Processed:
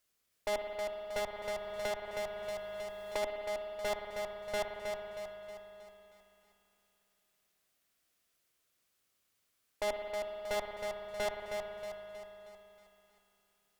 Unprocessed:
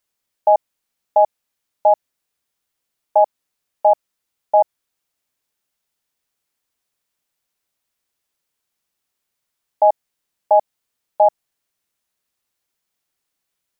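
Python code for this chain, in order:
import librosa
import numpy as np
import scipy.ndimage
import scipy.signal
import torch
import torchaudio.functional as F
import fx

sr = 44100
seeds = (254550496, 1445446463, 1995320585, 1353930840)

y = fx.tracing_dist(x, sr, depth_ms=0.025)
y = fx.peak_eq(y, sr, hz=900.0, db=-8.5, octaves=0.24)
y = fx.tube_stage(y, sr, drive_db=33.0, bias=0.5)
y = fx.echo_feedback(y, sr, ms=316, feedback_pct=50, wet_db=-6)
y = fx.rev_spring(y, sr, rt60_s=3.4, pass_ms=(56,), chirp_ms=70, drr_db=4.0)
y = fx.band_squash(y, sr, depth_pct=70, at=(1.18, 3.23))
y = y * librosa.db_to_amplitude(1.0)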